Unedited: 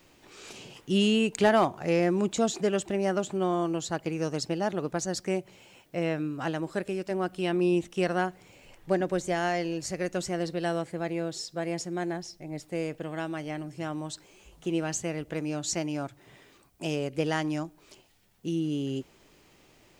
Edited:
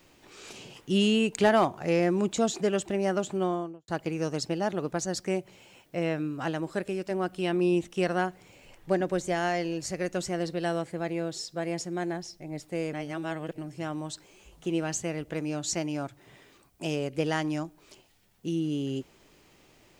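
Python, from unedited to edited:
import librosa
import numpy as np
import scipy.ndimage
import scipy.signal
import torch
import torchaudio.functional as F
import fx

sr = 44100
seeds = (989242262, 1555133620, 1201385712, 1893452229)

y = fx.studio_fade_out(x, sr, start_s=3.39, length_s=0.49)
y = fx.edit(y, sr, fx.reverse_span(start_s=12.93, length_s=0.65), tone=tone)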